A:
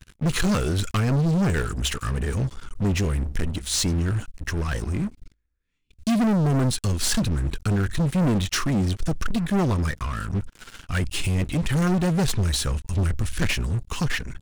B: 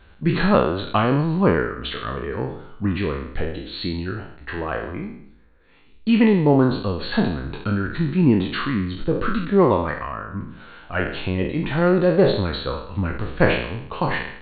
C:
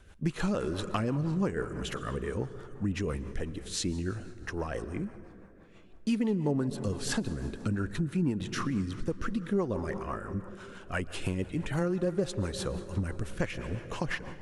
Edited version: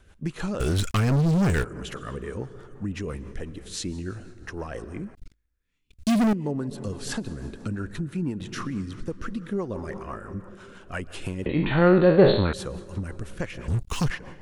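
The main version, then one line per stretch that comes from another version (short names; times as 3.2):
C
0.6–1.64 from A
5.15–6.33 from A
11.46–12.53 from B
13.68–14.1 from A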